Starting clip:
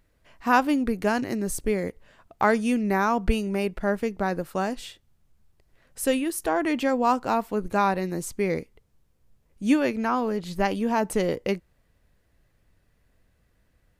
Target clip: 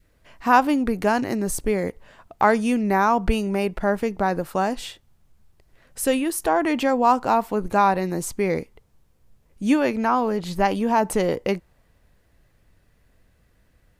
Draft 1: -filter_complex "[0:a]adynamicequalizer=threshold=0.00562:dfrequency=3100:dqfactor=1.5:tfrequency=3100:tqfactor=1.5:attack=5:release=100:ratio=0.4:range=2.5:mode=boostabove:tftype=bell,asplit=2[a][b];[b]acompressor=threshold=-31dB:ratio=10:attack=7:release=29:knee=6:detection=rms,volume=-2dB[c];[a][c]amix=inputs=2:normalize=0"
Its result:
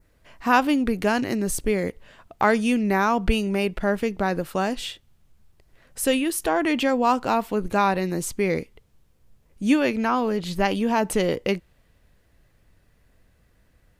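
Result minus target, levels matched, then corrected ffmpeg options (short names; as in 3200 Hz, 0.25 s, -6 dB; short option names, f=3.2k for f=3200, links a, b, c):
4000 Hz band +5.0 dB
-filter_complex "[0:a]adynamicequalizer=threshold=0.00562:dfrequency=860:dqfactor=1.5:tfrequency=860:tqfactor=1.5:attack=5:release=100:ratio=0.4:range=2.5:mode=boostabove:tftype=bell,asplit=2[a][b];[b]acompressor=threshold=-31dB:ratio=10:attack=7:release=29:knee=6:detection=rms,volume=-2dB[c];[a][c]amix=inputs=2:normalize=0"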